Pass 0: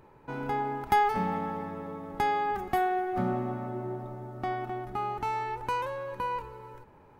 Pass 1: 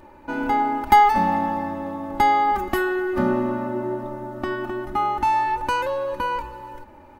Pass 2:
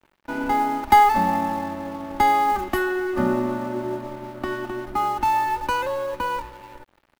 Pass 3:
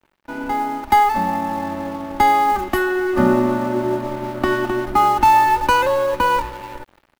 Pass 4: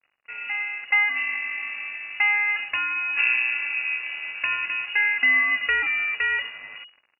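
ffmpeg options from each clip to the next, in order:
-af "aecho=1:1:3.4:0.96,volume=6.5dB"
-filter_complex "[0:a]acrossover=split=110|460|3400[a][b][c][d];[c]acrusher=bits=6:mode=log:mix=0:aa=0.000001[e];[a][b][e][d]amix=inputs=4:normalize=0,aeval=exprs='sgn(val(0))*max(abs(val(0))-0.00794,0)':c=same"
-af "dynaudnorm=f=360:g=3:m=11.5dB,volume=-1dB"
-af "lowpass=f=2.5k:t=q:w=0.5098,lowpass=f=2.5k:t=q:w=0.6013,lowpass=f=2.5k:t=q:w=0.9,lowpass=f=2.5k:t=q:w=2.563,afreqshift=-2900,volume=-6.5dB" -ar 24000 -c:a libmp3lame -b:a 32k

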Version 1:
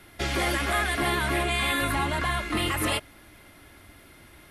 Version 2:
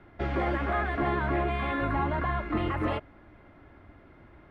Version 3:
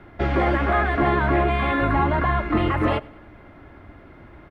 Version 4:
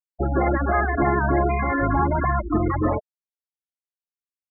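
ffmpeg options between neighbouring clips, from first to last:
-af "lowpass=1.3k"
-af "aecho=1:1:99|198|297:0.0631|0.0309|0.0151,volume=8dB"
-af "afftfilt=real='re*gte(hypot(re,im),0.158)':imag='im*gte(hypot(re,im),0.158)':win_size=1024:overlap=0.75"

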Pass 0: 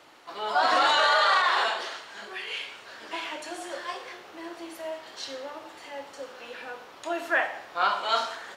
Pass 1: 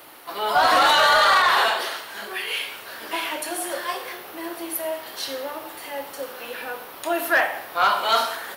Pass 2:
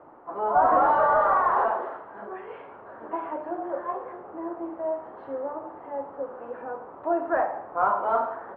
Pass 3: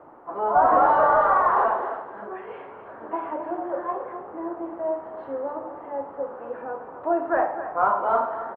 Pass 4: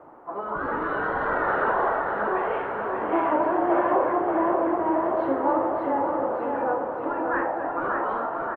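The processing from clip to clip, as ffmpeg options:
-filter_complex "[0:a]acrossover=split=1400[a][b];[b]aexciter=amount=10:drive=5.8:freq=10k[c];[a][c]amix=inputs=2:normalize=0,asoftclip=type=tanh:threshold=-16.5dB,volume=7dB"
-af "lowpass=f=1.1k:w=0.5412,lowpass=f=1.1k:w=1.3066"
-af "aecho=1:1:262:0.266,volume=2dB"
-af "afftfilt=real='re*lt(hypot(re,im),0.316)':imag='im*lt(hypot(re,im),0.316)':win_size=1024:overlap=0.75,dynaudnorm=f=240:g=17:m=10dB,aecho=1:1:584|1168|1752|2336|2920|3504|4088:0.562|0.304|0.164|0.0885|0.0478|0.0258|0.0139"

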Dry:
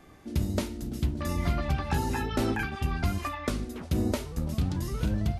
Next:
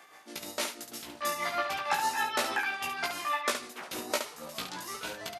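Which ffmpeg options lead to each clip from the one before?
-filter_complex "[0:a]highpass=820,tremolo=f=6.3:d=0.7,asplit=2[a][b];[b]aecho=0:1:17|70:0.708|0.501[c];[a][c]amix=inputs=2:normalize=0,volume=6.5dB"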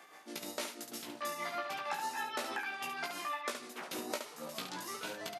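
-af "highpass=180,acompressor=threshold=-36dB:ratio=2.5,lowshelf=f=390:g=6,volume=-2.5dB"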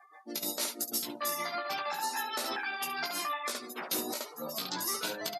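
-af "afftdn=nr=34:nf=-50,alimiter=level_in=7.5dB:limit=-24dB:level=0:latency=1:release=102,volume=-7.5dB,aexciter=amount=1.8:drive=8.4:freq=3.9k,volume=5.5dB"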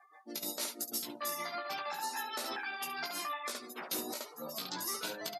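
-af "bandreject=f=50:t=h:w=6,bandreject=f=100:t=h:w=6,volume=-4dB"

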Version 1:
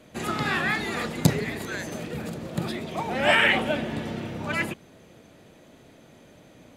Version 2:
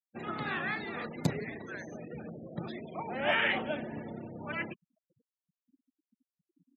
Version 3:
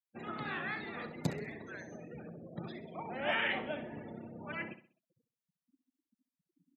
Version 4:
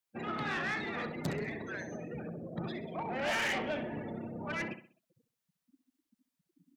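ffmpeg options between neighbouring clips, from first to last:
-af "highpass=f=130:p=1,highshelf=f=6k:g=-9.5,afftfilt=real='re*gte(hypot(re,im),0.02)':imag='im*gte(hypot(re,im),0.02)':win_size=1024:overlap=0.75,volume=-8dB"
-af "aecho=1:1:65|130|195|260:0.251|0.0879|0.0308|0.0108,volume=-4.5dB"
-af "asoftclip=type=tanh:threshold=-35.5dB,volume=6.5dB"

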